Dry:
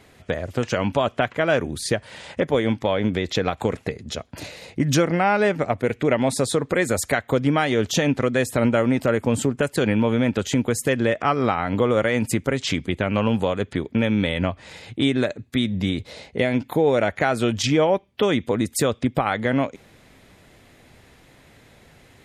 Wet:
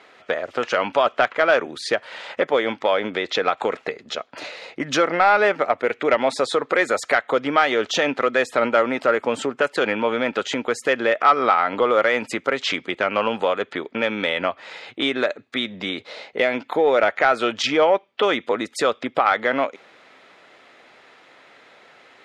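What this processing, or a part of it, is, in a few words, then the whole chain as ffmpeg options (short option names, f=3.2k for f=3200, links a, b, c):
intercom: -af "highpass=490,lowpass=4.1k,equalizer=f=1.3k:t=o:w=0.23:g=6,asoftclip=type=tanh:threshold=-9dB,volume=5dB"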